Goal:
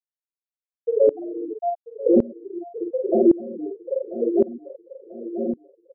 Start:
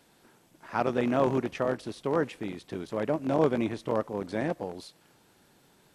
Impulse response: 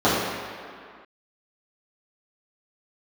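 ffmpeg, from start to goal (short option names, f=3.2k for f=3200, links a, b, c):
-filter_complex "[0:a]aeval=exprs='if(lt(val(0),0),0.447*val(0),val(0))':c=same,equalizer=f=210:t=o:w=1.5:g=-4[a];[1:a]atrim=start_sample=2205,atrim=end_sample=6174,asetrate=66150,aresample=44100[b];[a][b]afir=irnorm=-1:irlink=0,acrossover=split=260|3000[c][d][e];[d]acompressor=threshold=-20dB:ratio=6[f];[c][f][e]amix=inputs=3:normalize=0,afreqshift=71,afftfilt=real='re*gte(hypot(re,im),1)':imag='im*gte(hypot(re,im),1)':win_size=1024:overlap=0.75,asuperstop=centerf=4400:order=20:qfactor=0.97,asplit=2[g][h];[h]adelay=46,volume=-3.5dB[i];[g][i]amix=inputs=2:normalize=0,asplit=2[j][k];[k]adelay=989,lowpass=f=4.7k:p=1,volume=-15dB,asplit=2[l][m];[m]adelay=989,lowpass=f=4.7k:p=1,volume=0.52,asplit=2[n][o];[o]adelay=989,lowpass=f=4.7k:p=1,volume=0.52,asplit=2[p][q];[q]adelay=989,lowpass=f=4.7k:p=1,volume=0.52,asplit=2[r][s];[s]adelay=989,lowpass=f=4.7k:p=1,volume=0.52[t];[j][l][n][p][r][t]amix=inputs=6:normalize=0,alimiter=level_in=15dB:limit=-1dB:release=50:level=0:latency=1,aeval=exprs='val(0)*pow(10,-23*if(lt(mod(-0.9*n/s,1),2*abs(-0.9)/1000),1-mod(-0.9*n/s,1)/(2*abs(-0.9)/1000),(mod(-0.9*n/s,1)-2*abs(-0.9)/1000)/(1-2*abs(-0.9)/1000))/20)':c=same,volume=-5.5dB"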